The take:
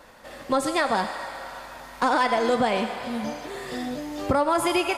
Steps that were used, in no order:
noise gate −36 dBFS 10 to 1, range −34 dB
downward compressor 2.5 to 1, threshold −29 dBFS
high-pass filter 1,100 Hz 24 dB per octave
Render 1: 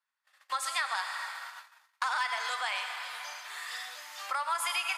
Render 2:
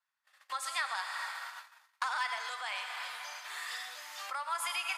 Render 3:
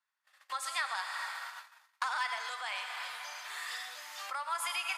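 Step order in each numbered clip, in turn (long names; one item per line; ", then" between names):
noise gate, then high-pass filter, then downward compressor
downward compressor, then noise gate, then high-pass filter
noise gate, then downward compressor, then high-pass filter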